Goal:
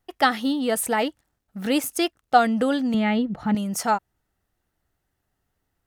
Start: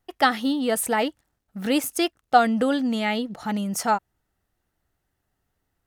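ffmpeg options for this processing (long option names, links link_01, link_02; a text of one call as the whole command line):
ffmpeg -i in.wav -filter_complex "[0:a]asettb=1/sr,asplit=3[link_01][link_02][link_03];[link_01]atrim=end=2.944[link_04];[link_02]atrim=start=2.94:end=3.55,asetpts=PTS-STARTPTS,afade=type=in:duration=0.004:curve=qsin,afade=type=out:start_time=0.606:duration=0.004:curve=qsin,bass=frequency=250:gain=10,treble=frequency=4000:gain=-13[link_05];[link_03]atrim=start=3.546[link_06];[link_04][link_05]acrossfade=duration=0.004:curve1=hsin:curve2=qsin[link_07];[link_07][link_06]acrossfade=duration=0.004:curve1=qsin:curve2=hsin" out.wav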